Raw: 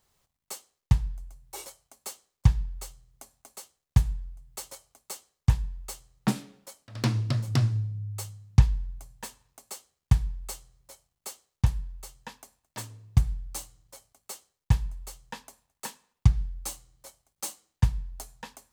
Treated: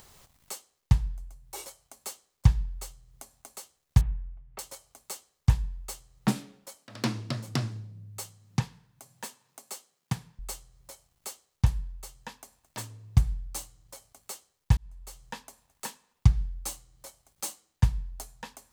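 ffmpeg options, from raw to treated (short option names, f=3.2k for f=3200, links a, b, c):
-filter_complex "[0:a]asettb=1/sr,asplit=3[a][b][c];[a]atrim=end=4.014[d];[b]atrim=start=4.01:end=4.59,asetpts=PTS-STARTPTS,afade=t=in:d=0.004:c=qsin,afade=t=out:st=0.576:d=0.004:c=qsin,lowpass=f=2.6k:w=0.5412,lowpass=f=2.6k:w=1.3066[e];[c]atrim=start=4.586[f];[d][e]acrossfade=d=0.004:c1=hsin:c2=qsin[g];[g][f]acrossfade=d=0.004:c1=qsin:c2=hsin,asettb=1/sr,asplit=3[h][i][j];[h]atrim=end=6.784[k];[i]atrim=start=6.78:end=10.39,asetpts=PTS-STARTPTS,afade=t=in:d=0.004:c=qsin,afade=t=out:st=3.606:d=0.004:c=qsin,highpass=f=150:w=0.5412,highpass=f=150:w=1.3066[l];[j]atrim=start=10.386[m];[k][l]acrossfade=d=0.004:c1=hsin:c2=qsin[n];[n][m]acrossfade=d=0.004:c1=qsin:c2=hsin,asplit=2[o][p];[o]atrim=end=14.77,asetpts=PTS-STARTPTS,afade=t=out:st=14.766:d=0.004:c=hsin[q];[p]atrim=start=14.77,asetpts=PTS-STARTPTS,afade=t=in:d=0.45[r];[q][r]concat=n=2:v=0:a=1,acompressor=mode=upward:threshold=-41dB:ratio=2.5"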